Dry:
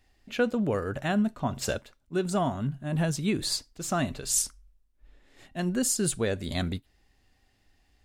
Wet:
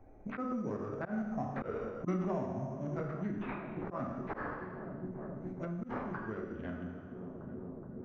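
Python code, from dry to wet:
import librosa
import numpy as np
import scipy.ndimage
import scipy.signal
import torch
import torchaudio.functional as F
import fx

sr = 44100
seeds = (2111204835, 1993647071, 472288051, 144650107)

y = fx.wiener(x, sr, points=25)
y = fx.doppler_pass(y, sr, speed_mps=13, closest_m=2.2, pass_at_s=2.09)
y = fx.low_shelf(y, sr, hz=310.0, db=-7.5)
y = fx.rev_plate(y, sr, seeds[0], rt60_s=1.1, hf_ratio=0.8, predelay_ms=0, drr_db=-0.5)
y = (np.kron(y[::6], np.eye(6)[0]) * 6)[:len(y)]
y = scipy.signal.sosfilt(scipy.signal.butter(4, 2000.0, 'lowpass', fs=sr, output='sos'), y)
y = fx.echo_filtered(y, sr, ms=421, feedback_pct=76, hz=1300.0, wet_db=-24)
y = fx.formant_shift(y, sr, semitones=-3)
y = fx.auto_swell(y, sr, attack_ms=141.0)
y = fx.band_squash(y, sr, depth_pct=100)
y = y * 10.0 ** (8.0 / 20.0)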